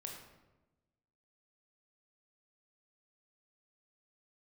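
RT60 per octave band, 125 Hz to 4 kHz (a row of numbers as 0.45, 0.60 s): 1.4, 1.4, 1.2, 1.0, 0.85, 0.65 s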